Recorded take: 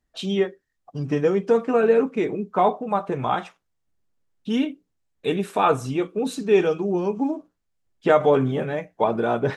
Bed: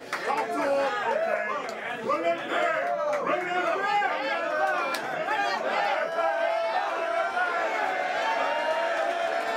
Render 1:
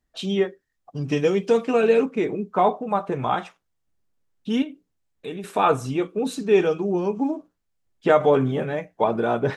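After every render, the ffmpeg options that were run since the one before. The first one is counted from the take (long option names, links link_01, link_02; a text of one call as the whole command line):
ffmpeg -i in.wav -filter_complex "[0:a]asettb=1/sr,asplit=3[link_01][link_02][link_03];[link_01]atrim=end=1.084[link_04];[link_02]atrim=start=1.08:end=2.06,asetpts=PTS-STARTPTS,afade=type=in:duration=0.004:curve=qsin,afade=type=out:start_time=0.976:duration=0.004:curve=qsin,highshelf=frequency=2100:width_type=q:width=1.5:gain=7[link_05];[link_03]atrim=start=2.056[link_06];[link_04][link_05]acrossfade=duration=0.004:curve1=hsin:curve2=qsin[link_07];[link_07][link_06]acrossfade=duration=0.004:curve1=qsin:curve2=hsin,asettb=1/sr,asplit=3[link_08][link_09][link_10];[link_08]atrim=end=4.624[link_11];[link_09]atrim=start=4.62:end=5.44,asetpts=PTS-STARTPTS,afade=type=in:duration=0.004:curve=qsin,afade=type=out:start_time=0.816:duration=0.004:curve=qsin,acompressor=threshold=-36dB:ratio=2:attack=3.2:release=140:knee=1:detection=peak[link_12];[link_10]atrim=start=5.436[link_13];[link_11][link_12]acrossfade=duration=0.004:curve1=hsin:curve2=qsin[link_14];[link_14][link_13]acrossfade=duration=0.004:curve1=qsin:curve2=hsin" out.wav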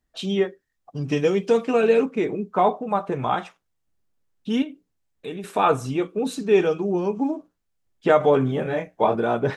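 ffmpeg -i in.wav -filter_complex "[0:a]asettb=1/sr,asplit=3[link_01][link_02][link_03];[link_01]atrim=end=8.634[link_04];[link_02]atrim=start=8.63:end=9.15,asetpts=PTS-STARTPTS,afade=type=in:duration=0.004:curve=qsin,afade=type=out:start_time=0.516:duration=0.004:curve=qsin,asplit=2[link_05][link_06];[link_06]adelay=24,volume=-3dB[link_07];[link_05][link_07]amix=inputs=2:normalize=0,atrim=end_sample=22932[link_08];[link_03]atrim=start=9.146[link_09];[link_04][link_08]acrossfade=duration=0.004:curve1=hsin:curve2=qsin[link_10];[link_10][link_09]acrossfade=duration=0.004:curve1=qsin:curve2=hsin" out.wav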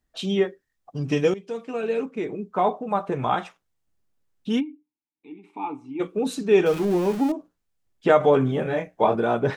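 ffmpeg -i in.wav -filter_complex "[0:a]asplit=3[link_01][link_02][link_03];[link_01]afade=type=out:start_time=4.59:duration=0.02[link_04];[link_02]asplit=3[link_05][link_06][link_07];[link_05]bandpass=frequency=300:width_type=q:width=8,volume=0dB[link_08];[link_06]bandpass=frequency=870:width_type=q:width=8,volume=-6dB[link_09];[link_07]bandpass=frequency=2240:width_type=q:width=8,volume=-9dB[link_10];[link_08][link_09][link_10]amix=inputs=3:normalize=0,afade=type=in:start_time=4.59:duration=0.02,afade=type=out:start_time=5.99:duration=0.02[link_11];[link_03]afade=type=in:start_time=5.99:duration=0.02[link_12];[link_04][link_11][link_12]amix=inputs=3:normalize=0,asettb=1/sr,asplit=3[link_13][link_14][link_15];[link_13]atrim=end=6.664[link_16];[link_14]atrim=start=6.66:end=7.32,asetpts=PTS-STARTPTS,afade=type=in:duration=0.004:curve=qsin,afade=type=out:start_time=0.656:duration=0.004:curve=qsin,aeval=exprs='val(0)+0.5*0.0335*sgn(val(0))':channel_layout=same[link_17];[link_15]atrim=start=7.316[link_18];[link_16][link_17]acrossfade=duration=0.004:curve1=hsin:curve2=qsin[link_19];[link_19][link_18]acrossfade=duration=0.004:curve1=qsin:curve2=hsin,asplit=2[link_20][link_21];[link_20]atrim=end=1.34,asetpts=PTS-STARTPTS,afade=type=out:start_time=1.336:duration=0.004:curve=hsin:silence=0.149624[link_22];[link_21]atrim=start=1.34,asetpts=PTS-STARTPTS,afade=type=in:duration=1.88:silence=0.149624[link_23];[link_22][link_23]concat=n=2:v=0:a=1" out.wav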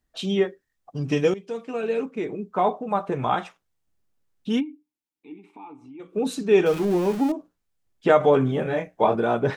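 ffmpeg -i in.wav -filter_complex "[0:a]asettb=1/sr,asplit=3[link_01][link_02][link_03];[link_01]atrim=end=5.444[link_04];[link_02]atrim=start=5.44:end=6.13,asetpts=PTS-STARTPTS,afade=type=in:duration=0.004:curve=qsin,afade=type=out:start_time=0.686:duration=0.004:curve=qsin,acompressor=threshold=-44dB:ratio=2.5:attack=3.2:release=140:knee=1:detection=peak[link_05];[link_03]atrim=start=6.126[link_06];[link_04][link_05]acrossfade=duration=0.004:curve1=hsin:curve2=qsin[link_07];[link_07][link_06]acrossfade=duration=0.004:curve1=qsin:curve2=hsin" out.wav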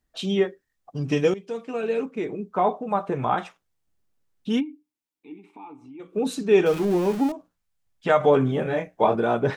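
ffmpeg -i in.wav -filter_complex "[0:a]asettb=1/sr,asplit=3[link_01][link_02][link_03];[link_01]atrim=end=2.404[link_04];[link_02]atrim=start=2.4:end=3.38,asetpts=PTS-STARTPTS,afade=type=in:duration=0.004:curve=qsin,afade=type=out:start_time=0.976:duration=0.004:curve=qsin,acrossover=split=2600[link_05][link_06];[link_06]acompressor=threshold=-51dB:ratio=4:attack=1:release=60[link_07];[link_05][link_07]amix=inputs=2:normalize=0[link_08];[link_03]atrim=start=3.376[link_09];[link_04][link_08]acrossfade=duration=0.004:curve1=hsin:curve2=qsin[link_10];[link_10][link_09]acrossfade=duration=0.004:curve1=qsin:curve2=hsin,asettb=1/sr,asplit=3[link_11][link_12][link_13];[link_11]atrim=end=7.294[link_14];[link_12]atrim=start=7.29:end=8.24,asetpts=PTS-STARTPTS,afade=type=in:duration=0.004:curve=qsin,afade=type=out:start_time=0.946:duration=0.004:curve=qsin,equalizer=frequency=350:width_type=o:width=0.91:gain=-9.5[link_15];[link_13]atrim=start=8.236[link_16];[link_14][link_15]acrossfade=duration=0.004:curve1=hsin:curve2=qsin[link_17];[link_17][link_16]acrossfade=duration=0.004:curve1=qsin:curve2=hsin" out.wav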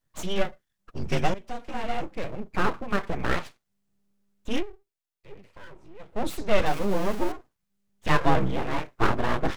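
ffmpeg -i in.wav -af "afreqshift=-100,aeval=exprs='abs(val(0))':channel_layout=same" out.wav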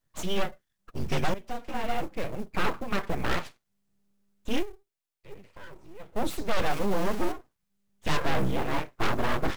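ffmpeg -i in.wav -af "acrusher=bits=7:mode=log:mix=0:aa=0.000001,asoftclip=type=hard:threshold=-17.5dB" out.wav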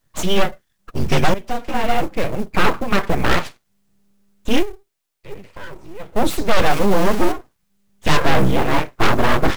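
ffmpeg -i in.wav -af "volume=11.5dB" out.wav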